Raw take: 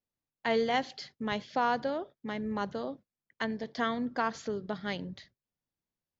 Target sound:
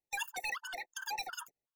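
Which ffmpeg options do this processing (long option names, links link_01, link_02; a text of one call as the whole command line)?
ffmpeg -i in.wav -af "aeval=exprs='0.141*(cos(1*acos(clip(val(0)/0.141,-1,1)))-cos(1*PI/2))+0.0224*(cos(5*acos(clip(val(0)/0.141,-1,1)))-cos(5*PI/2))':channel_layout=same,asetrate=155673,aresample=44100,afftfilt=real='re*gt(sin(2*PI*2.7*pts/sr)*(1-2*mod(floor(b*sr/1024/900),2)),0)':imag='im*gt(sin(2*PI*2.7*pts/sr)*(1-2*mod(floor(b*sr/1024/900),2)),0)':win_size=1024:overlap=0.75,volume=-6.5dB" out.wav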